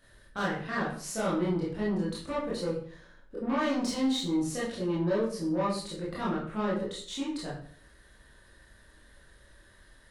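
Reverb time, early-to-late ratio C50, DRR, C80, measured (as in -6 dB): 0.50 s, 3.5 dB, -7.5 dB, 8.5 dB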